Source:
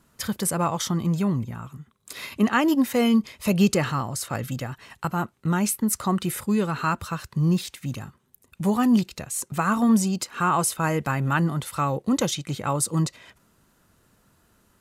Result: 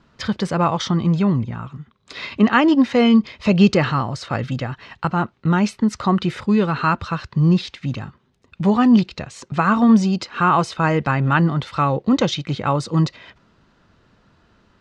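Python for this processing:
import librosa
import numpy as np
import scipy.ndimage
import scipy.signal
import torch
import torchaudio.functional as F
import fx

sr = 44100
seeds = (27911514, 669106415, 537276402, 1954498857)

y = scipy.signal.sosfilt(scipy.signal.butter(4, 4800.0, 'lowpass', fs=sr, output='sos'), x)
y = y * 10.0 ** (6.0 / 20.0)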